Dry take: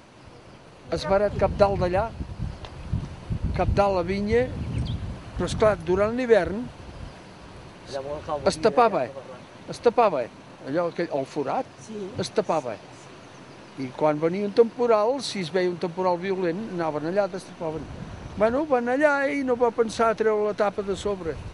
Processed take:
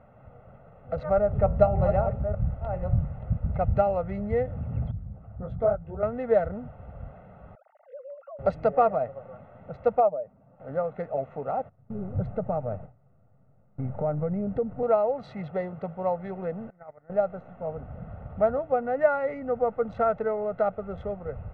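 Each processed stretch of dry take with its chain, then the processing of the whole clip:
0:01.17–0:03.33: delay that plays each chunk backwards 589 ms, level −7 dB + low-shelf EQ 190 Hz +7 dB + hum removal 79.95 Hz, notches 17
0:04.91–0:06.03: spectral envelope exaggerated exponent 1.5 + micro pitch shift up and down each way 43 cents
0:07.55–0:08.39: three sine waves on the formant tracks + high-pass filter 200 Hz + downward compressor, threshold −37 dBFS
0:10.00–0:10.60: expanding power law on the bin magnitudes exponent 1.6 + expander for the loud parts, over −33 dBFS
0:11.69–0:14.83: RIAA equalisation playback + downward compressor 2.5 to 1, threshold −21 dBFS + noise gate with hold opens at −25 dBFS, closes at −31 dBFS
0:16.70–0:17.10: noise gate −25 dBFS, range −14 dB + transistor ladder low-pass 2,200 Hz, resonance 65%
whole clip: adaptive Wiener filter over 9 samples; low-pass filter 1,300 Hz 12 dB per octave; comb filter 1.5 ms, depth 87%; level −5.5 dB

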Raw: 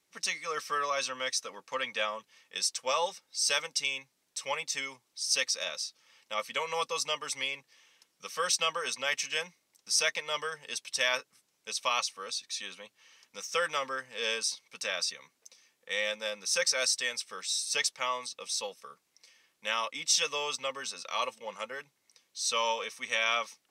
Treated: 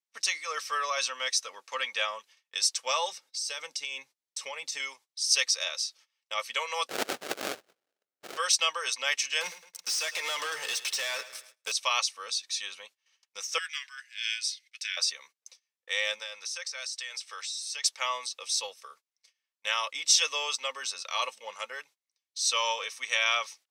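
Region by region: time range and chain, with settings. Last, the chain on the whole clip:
0:03.12–0:04.80: low-shelf EQ 410 Hz +11 dB + downward compressor 8 to 1, threshold −34 dBFS
0:06.88–0:08.37: tilt shelving filter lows −6.5 dB, about 850 Hz + sample-rate reduction 1,000 Hz, jitter 20%
0:09.41–0:11.72: downward compressor 12 to 1, threshold −41 dBFS + leveller curve on the samples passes 5 + repeating echo 108 ms, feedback 50%, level −15 dB
0:13.58–0:14.97: Butterworth high-pass 1,800 Hz + high-shelf EQ 4,200 Hz −6.5 dB + frequency shifter −91 Hz
0:16.19–0:17.84: meter weighting curve A + downward compressor 12 to 1, threshold −36 dBFS
whole clip: high-pass filter 530 Hz 12 dB per octave; noise gate −56 dBFS, range −24 dB; parametric band 4,800 Hz +4.5 dB 2.4 octaves

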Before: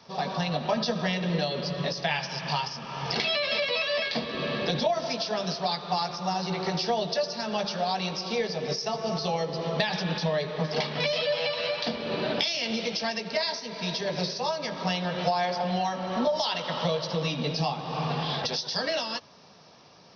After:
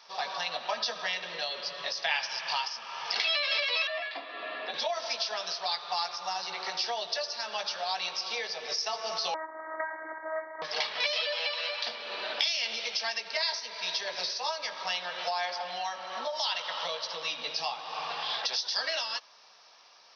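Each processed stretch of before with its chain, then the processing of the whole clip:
0:03.87–0:04.74: high-frequency loss of the air 400 metres + frequency shifter +50 Hz + comb filter 2.9 ms, depth 41%
0:09.34–0:10.62: lower of the sound and its delayed copy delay 3.5 ms + phases set to zero 317 Hz + linear-phase brick-wall low-pass 2,200 Hz
whole clip: speech leveller 2 s; high-pass filter 970 Hz 12 dB per octave

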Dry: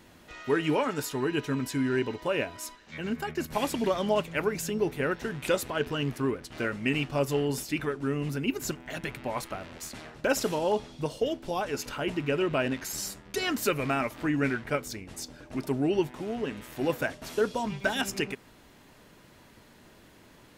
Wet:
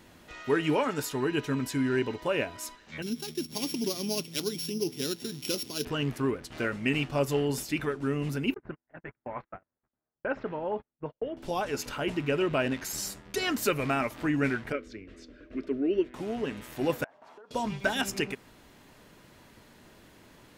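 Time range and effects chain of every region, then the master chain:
0:03.02–0:05.85: samples sorted by size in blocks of 8 samples + high-pass filter 180 Hz + flat-topped bell 990 Hz −13 dB 2.3 octaves
0:08.54–0:11.37: noise gate −36 dBFS, range −40 dB + transistor ladder low-pass 2,300 Hz, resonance 25% + low-pass that shuts in the quiet parts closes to 1,200 Hz, open at −28 dBFS
0:14.72–0:16.14: low-pass filter 2,300 Hz + phaser with its sweep stopped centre 350 Hz, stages 4
0:17.04–0:17.51: resonant band-pass 900 Hz, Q 2.5 + downward compressor 20 to 1, threshold −47 dBFS
whole clip: no processing

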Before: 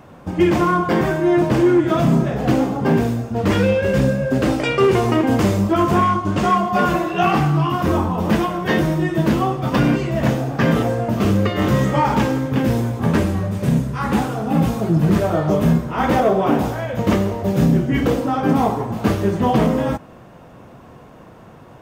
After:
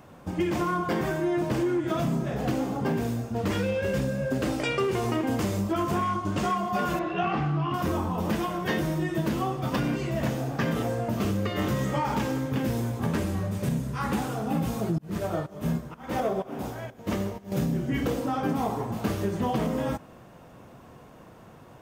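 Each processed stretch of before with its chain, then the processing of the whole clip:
0:06.99–0:07.74: low-pass filter 3,100 Hz + notch filter 930 Hz, Q 20
0:14.98–0:17.52: fake sidechain pumping 125 BPM, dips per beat 1, −23 dB, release 392 ms + echo machine with several playback heads 76 ms, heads all three, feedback 68%, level −23.5 dB + expander for the loud parts, over −33 dBFS
whole clip: high-shelf EQ 4,600 Hz +6.5 dB; downward compressor, threshold −16 dBFS; level −7 dB

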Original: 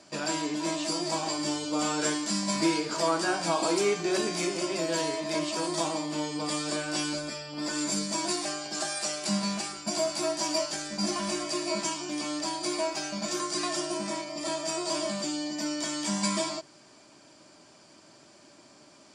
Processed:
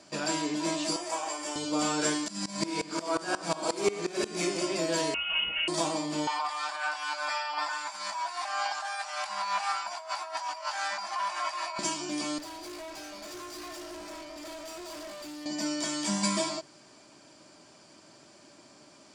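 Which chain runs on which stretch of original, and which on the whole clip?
0:00.96–0:01.56: high-pass filter 570 Hz + parametric band 4,300 Hz −11 dB 0.61 octaves
0:02.28–0:04.41: multi-tap delay 64/302 ms −3/−9.5 dB + tremolo with a ramp in dB swelling 5.6 Hz, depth 20 dB
0:05.14–0:05.68: high-frequency loss of the air 370 metres + hollow resonant body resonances 390/1,800 Hz, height 11 dB + voice inversion scrambler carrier 3,200 Hz
0:06.27–0:11.79: high-pass filter 420 Hz 24 dB per octave + compressor whose output falls as the input rises −38 dBFS + drawn EQ curve 190 Hz 0 dB, 430 Hz −21 dB, 840 Hz +13 dB, 4,300 Hz −1 dB, 8,000 Hz −8 dB
0:12.38–0:15.46: Butterworth high-pass 240 Hz 72 dB per octave + high-shelf EQ 7,800 Hz −11.5 dB + tube saturation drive 40 dB, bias 0.6
whole clip: no processing

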